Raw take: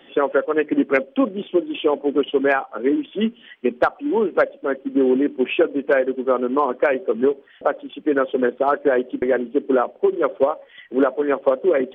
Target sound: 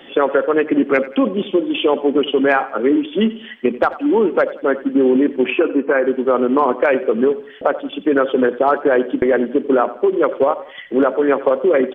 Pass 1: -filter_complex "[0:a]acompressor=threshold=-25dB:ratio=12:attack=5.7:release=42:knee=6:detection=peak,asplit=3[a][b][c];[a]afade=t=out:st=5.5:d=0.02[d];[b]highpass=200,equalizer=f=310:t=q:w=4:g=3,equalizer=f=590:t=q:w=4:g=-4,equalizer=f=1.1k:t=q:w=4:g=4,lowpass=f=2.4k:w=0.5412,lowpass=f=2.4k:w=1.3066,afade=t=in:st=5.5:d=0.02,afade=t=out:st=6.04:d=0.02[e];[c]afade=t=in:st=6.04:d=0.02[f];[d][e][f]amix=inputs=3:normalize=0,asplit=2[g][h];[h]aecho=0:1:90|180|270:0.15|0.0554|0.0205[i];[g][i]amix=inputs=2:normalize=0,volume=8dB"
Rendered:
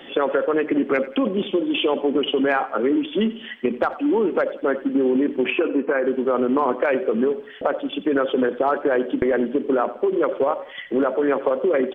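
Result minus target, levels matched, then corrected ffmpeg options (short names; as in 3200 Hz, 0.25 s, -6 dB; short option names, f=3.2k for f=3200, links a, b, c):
compressor: peak gain reduction +6 dB
-filter_complex "[0:a]acompressor=threshold=-18.5dB:ratio=12:attack=5.7:release=42:knee=6:detection=peak,asplit=3[a][b][c];[a]afade=t=out:st=5.5:d=0.02[d];[b]highpass=200,equalizer=f=310:t=q:w=4:g=3,equalizer=f=590:t=q:w=4:g=-4,equalizer=f=1.1k:t=q:w=4:g=4,lowpass=f=2.4k:w=0.5412,lowpass=f=2.4k:w=1.3066,afade=t=in:st=5.5:d=0.02,afade=t=out:st=6.04:d=0.02[e];[c]afade=t=in:st=6.04:d=0.02[f];[d][e][f]amix=inputs=3:normalize=0,asplit=2[g][h];[h]aecho=0:1:90|180|270:0.15|0.0554|0.0205[i];[g][i]amix=inputs=2:normalize=0,volume=8dB"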